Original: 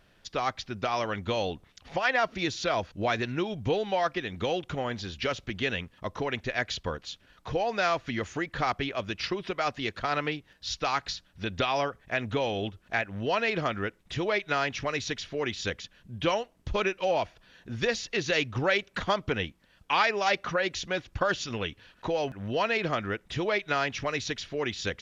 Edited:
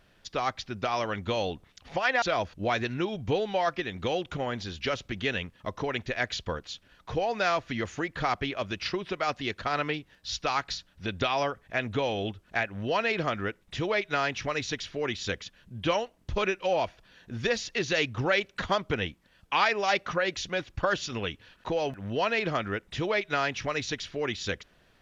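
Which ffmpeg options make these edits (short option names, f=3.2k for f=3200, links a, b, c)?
-filter_complex "[0:a]asplit=2[a][b];[a]atrim=end=2.222[c];[b]atrim=start=2.598[d];[c][d]acrossfade=d=0.004:c1=hsin:c2=hsin"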